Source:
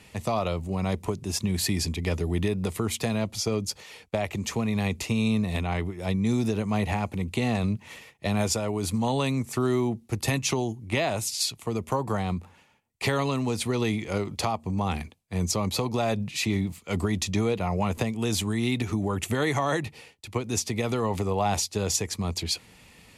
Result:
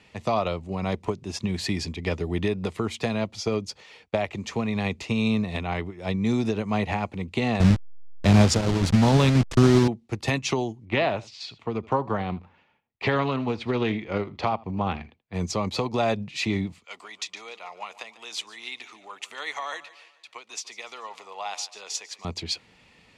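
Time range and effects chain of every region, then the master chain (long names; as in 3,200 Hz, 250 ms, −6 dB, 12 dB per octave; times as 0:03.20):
0:07.60–0:09.88: hold until the input has moved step −27 dBFS + bass and treble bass +10 dB, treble +6 dB
0:10.85–0:15.34: low-pass filter 3,500 Hz + single-tap delay 80 ms −18 dB + highs frequency-modulated by the lows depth 0.17 ms
0:16.85–0:22.25: high-pass filter 1,100 Hz + parametric band 1,600 Hz −4 dB 0.59 octaves + repeating echo 146 ms, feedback 47%, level −16 dB
whole clip: low-pass filter 4,900 Hz 12 dB per octave; low-shelf EQ 160 Hz −6.5 dB; expander for the loud parts 1.5 to 1, over −37 dBFS; level +6.5 dB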